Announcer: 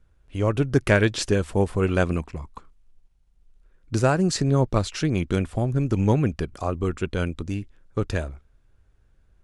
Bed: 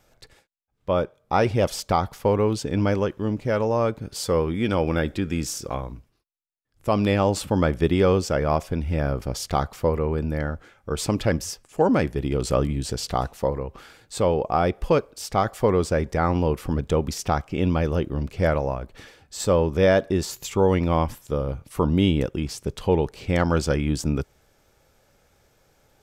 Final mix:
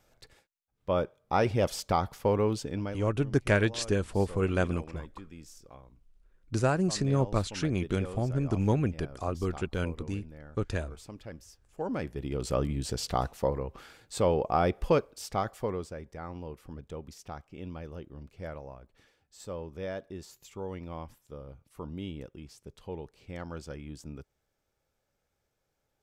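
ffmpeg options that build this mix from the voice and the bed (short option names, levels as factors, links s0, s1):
-filter_complex "[0:a]adelay=2600,volume=0.501[s0];[1:a]volume=3.98,afade=t=out:st=2.5:d=0.53:silence=0.149624,afade=t=in:st=11.55:d=1.46:silence=0.133352,afade=t=out:st=14.91:d=1.04:silence=0.188365[s1];[s0][s1]amix=inputs=2:normalize=0"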